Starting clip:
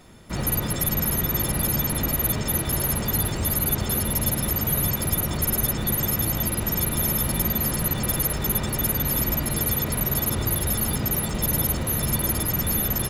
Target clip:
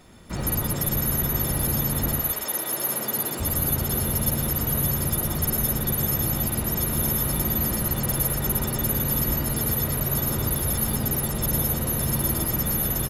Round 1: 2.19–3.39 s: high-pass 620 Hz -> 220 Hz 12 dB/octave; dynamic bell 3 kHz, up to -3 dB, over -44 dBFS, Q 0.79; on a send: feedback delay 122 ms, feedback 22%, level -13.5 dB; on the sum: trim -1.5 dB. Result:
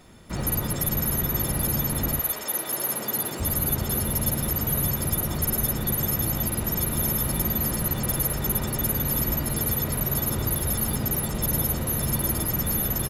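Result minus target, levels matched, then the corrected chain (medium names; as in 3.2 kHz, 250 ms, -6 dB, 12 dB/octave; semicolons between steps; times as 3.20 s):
echo-to-direct -8 dB
2.19–3.39 s: high-pass 620 Hz -> 220 Hz 12 dB/octave; dynamic bell 3 kHz, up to -3 dB, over -44 dBFS, Q 0.79; on a send: feedback delay 122 ms, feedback 22%, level -5.5 dB; on the sum: trim -1.5 dB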